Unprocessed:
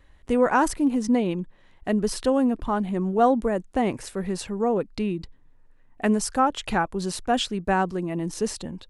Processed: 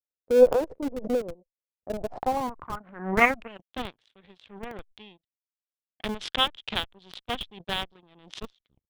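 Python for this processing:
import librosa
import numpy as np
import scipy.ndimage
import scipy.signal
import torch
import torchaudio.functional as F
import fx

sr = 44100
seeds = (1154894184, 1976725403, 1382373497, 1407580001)

p1 = fx.tape_stop_end(x, sr, length_s=0.44)
p2 = scipy.signal.sosfilt(scipy.signal.butter(4, 55.0, 'highpass', fs=sr, output='sos'), p1)
p3 = fx.power_curve(p2, sr, exponent=3.0)
p4 = fx.filter_sweep_lowpass(p3, sr, from_hz=510.0, to_hz=3400.0, start_s=1.78, end_s=3.7, q=6.1)
p5 = fx.schmitt(p4, sr, flips_db=-32.0)
p6 = p4 + F.gain(torch.from_numpy(p5), -6.0).numpy()
y = fx.pre_swell(p6, sr, db_per_s=100.0)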